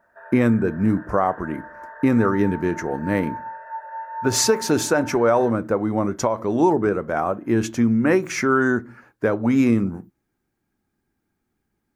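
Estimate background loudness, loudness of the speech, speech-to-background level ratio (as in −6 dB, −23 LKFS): −36.0 LKFS, −21.0 LKFS, 15.0 dB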